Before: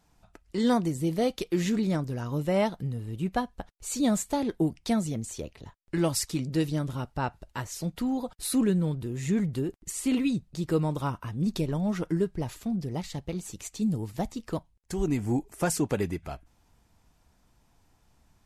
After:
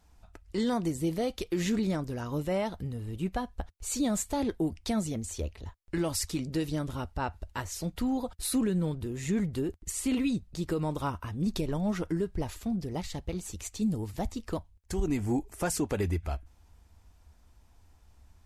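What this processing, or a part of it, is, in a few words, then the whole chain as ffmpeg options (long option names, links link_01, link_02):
car stereo with a boomy subwoofer: -af "lowshelf=frequency=100:width_type=q:width=3:gain=6,alimiter=limit=-20.5dB:level=0:latency=1:release=65"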